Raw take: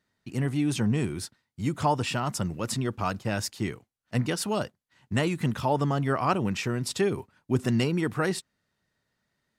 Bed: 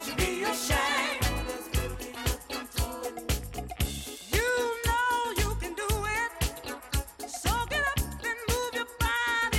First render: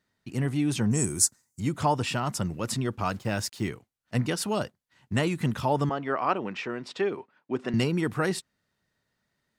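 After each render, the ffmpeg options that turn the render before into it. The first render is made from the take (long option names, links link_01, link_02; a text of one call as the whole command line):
ffmpeg -i in.wav -filter_complex "[0:a]asettb=1/sr,asplit=3[link_01][link_02][link_03];[link_01]atrim=end=0.914[link_04];[link_02]atrim=start=0.91:end=1.6,asetpts=PTS-STARTPTS,afade=type=in:duration=0.004:curve=qsin,afade=type=out:start_time=0.686:duration=0.004:curve=qsin,highshelf=frequency=4900:width_type=q:width=3:gain=13.5[link_05];[link_03]atrim=start=1.596[link_06];[link_04][link_05]acrossfade=duration=0.004:curve1=hsin:curve2=qsin[link_07];[link_07][link_06]acrossfade=duration=0.004:curve1=qsin:curve2=hsin,asettb=1/sr,asplit=3[link_08][link_09][link_10];[link_08]atrim=end=3.124[link_11];[link_09]atrim=start=3.12:end=3.69,asetpts=PTS-STARTPTS,afade=type=in:duration=0.004:curve=qsin,afade=type=out:start_time=0.566:duration=0.004:curve=qsin,acrusher=bits=8:mix=0:aa=0.5[link_12];[link_10]atrim=start=3.686[link_13];[link_11][link_12]acrossfade=duration=0.004:curve1=hsin:curve2=qsin[link_14];[link_14][link_13]acrossfade=duration=0.004:curve1=qsin:curve2=hsin,asettb=1/sr,asplit=3[link_15][link_16][link_17];[link_15]atrim=end=5.894[link_18];[link_16]atrim=start=5.89:end=7.74,asetpts=PTS-STARTPTS,afade=type=in:duration=0.004:curve=qsin,afade=type=out:start_time=1.846:duration=0.004:curve=qsin,highpass=310,lowpass=3100[link_19];[link_17]atrim=start=7.736[link_20];[link_18][link_19]acrossfade=duration=0.004:curve1=hsin:curve2=qsin[link_21];[link_21][link_20]acrossfade=duration=0.004:curve1=qsin:curve2=hsin" out.wav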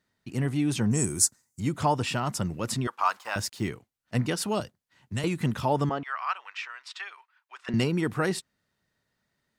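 ffmpeg -i in.wav -filter_complex "[0:a]asettb=1/sr,asplit=3[link_01][link_02][link_03];[link_01]atrim=end=2.874[link_04];[link_02]atrim=start=2.87:end=3.36,asetpts=PTS-STARTPTS,afade=type=in:duration=0.004:curve=qsin,afade=type=out:start_time=0.486:duration=0.004:curve=qsin,highpass=frequency=1000:width_type=q:width=2.5[link_05];[link_03]atrim=start=3.356[link_06];[link_04][link_05]acrossfade=duration=0.004:curve1=hsin:curve2=qsin[link_07];[link_07][link_06]acrossfade=duration=0.004:curve1=qsin:curve2=hsin,asettb=1/sr,asplit=3[link_08][link_09][link_10];[link_08]atrim=end=4.604[link_11];[link_09]atrim=start=4.6:end=5.24,asetpts=PTS-STARTPTS,afade=type=in:duration=0.004:curve=qsin,afade=type=out:start_time=0.636:duration=0.004:curve=qsin,acrossover=split=130|3000[link_12][link_13][link_14];[link_13]acompressor=threshold=-51dB:ratio=1.5:attack=3.2:release=140:knee=2.83:detection=peak[link_15];[link_12][link_15][link_14]amix=inputs=3:normalize=0[link_16];[link_10]atrim=start=5.236[link_17];[link_11][link_16]acrossfade=duration=0.004:curve1=hsin:curve2=qsin[link_18];[link_18][link_17]acrossfade=duration=0.004:curve1=qsin:curve2=hsin,asettb=1/sr,asplit=3[link_19][link_20][link_21];[link_19]atrim=end=6.034[link_22];[link_20]atrim=start=6.03:end=7.69,asetpts=PTS-STARTPTS,afade=type=in:duration=0.004:curve=qsin,afade=type=out:start_time=1.656:duration=0.004:curve=qsin,highpass=frequency=1100:width=0.5412,highpass=frequency=1100:width=1.3066[link_23];[link_21]atrim=start=7.686[link_24];[link_22][link_23]acrossfade=duration=0.004:curve1=hsin:curve2=qsin[link_25];[link_25][link_24]acrossfade=duration=0.004:curve1=qsin:curve2=hsin" out.wav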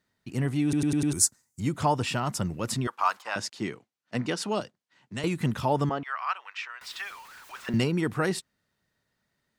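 ffmpeg -i in.wav -filter_complex "[0:a]asettb=1/sr,asplit=3[link_01][link_02][link_03];[link_01]atrim=end=3.224[link_04];[link_02]atrim=start=3.22:end=5.24,asetpts=PTS-STARTPTS,afade=type=in:duration=0.004:curve=qsin,afade=type=out:start_time=2.016:duration=0.004:curve=qsin,highpass=180,lowpass=7300[link_05];[link_03]atrim=start=5.236[link_06];[link_04][link_05]acrossfade=duration=0.004:curve1=hsin:curve2=qsin[link_07];[link_07][link_06]acrossfade=duration=0.004:curve1=qsin:curve2=hsin,asettb=1/sr,asplit=3[link_08][link_09][link_10];[link_08]atrim=end=6.814[link_11];[link_09]atrim=start=6.81:end=7.78,asetpts=PTS-STARTPTS,afade=type=in:duration=0.004:curve=qsin,afade=type=out:start_time=0.966:duration=0.004:curve=qsin,aeval=exprs='val(0)+0.5*0.00708*sgn(val(0))':channel_layout=same[link_12];[link_10]atrim=start=7.776[link_13];[link_11][link_12]acrossfade=duration=0.004:curve1=hsin:curve2=qsin[link_14];[link_14][link_13]acrossfade=duration=0.004:curve1=qsin:curve2=hsin,asplit=6[link_15][link_16][link_17][link_18][link_19][link_20];[link_15]atrim=end=0.732[link_21];[link_16]atrim=start=0.628:end=0.732[link_22];[link_17]atrim=start=0.628:end=0.732[link_23];[link_18]atrim=start=0.628:end=0.732[link_24];[link_19]atrim=start=0.628:end=0.732[link_25];[link_20]atrim=start=1.128[link_26];[link_21][link_22]acrossfade=duration=0.004:curve1=hsin:curve2=hsin[link_27];[link_27][link_23]acrossfade=duration=0.004:curve1=hsin:curve2=hsin[link_28];[link_28][link_24]acrossfade=duration=0.004:curve1=hsin:curve2=hsin[link_29];[link_29][link_25]acrossfade=duration=0.004:curve1=hsin:curve2=hsin[link_30];[link_30][link_26]acrossfade=duration=0.004:curve1=hsin:curve2=hsin" out.wav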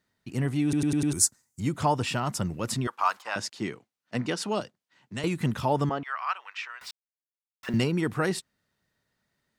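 ffmpeg -i in.wav -filter_complex "[0:a]asplit=3[link_01][link_02][link_03];[link_01]atrim=end=6.91,asetpts=PTS-STARTPTS,afade=type=out:start_time=6.906:duration=0.004:curve=hsin[link_04];[link_02]atrim=start=6.91:end=7.63,asetpts=PTS-STARTPTS,volume=0[link_05];[link_03]atrim=start=7.63,asetpts=PTS-STARTPTS,afade=type=in:duration=0.004:curve=hsin[link_06];[link_04][link_05][link_06]concat=n=3:v=0:a=1" out.wav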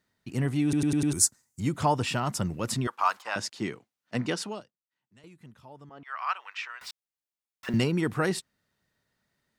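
ffmpeg -i in.wav -filter_complex "[0:a]asplit=3[link_01][link_02][link_03];[link_01]atrim=end=4.75,asetpts=PTS-STARTPTS,afade=type=out:start_time=4.38:duration=0.37:curve=qua:silence=0.0668344[link_04];[link_02]atrim=start=4.75:end=5.85,asetpts=PTS-STARTPTS,volume=-23.5dB[link_05];[link_03]atrim=start=5.85,asetpts=PTS-STARTPTS,afade=type=in:duration=0.37:curve=qua:silence=0.0668344[link_06];[link_04][link_05][link_06]concat=n=3:v=0:a=1" out.wav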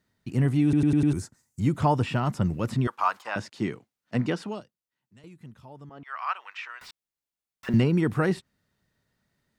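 ffmpeg -i in.wav -filter_complex "[0:a]acrossover=split=3000[link_01][link_02];[link_02]acompressor=threshold=-47dB:ratio=4:attack=1:release=60[link_03];[link_01][link_03]amix=inputs=2:normalize=0,lowshelf=frequency=310:gain=6.5" out.wav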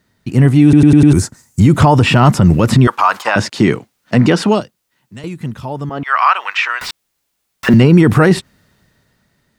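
ffmpeg -i in.wav -af "dynaudnorm=framelen=300:gausssize=7:maxgain=9.5dB,alimiter=level_in=13dB:limit=-1dB:release=50:level=0:latency=1" out.wav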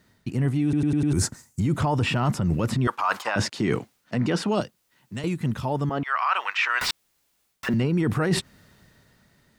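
ffmpeg -i in.wav -af "alimiter=limit=-4dB:level=0:latency=1:release=260,areverse,acompressor=threshold=-21dB:ratio=6,areverse" out.wav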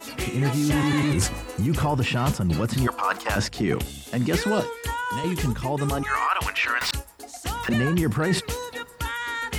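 ffmpeg -i in.wav -i bed.wav -filter_complex "[1:a]volume=-2dB[link_01];[0:a][link_01]amix=inputs=2:normalize=0" out.wav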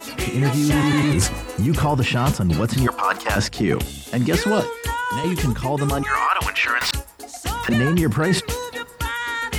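ffmpeg -i in.wav -af "volume=4dB" out.wav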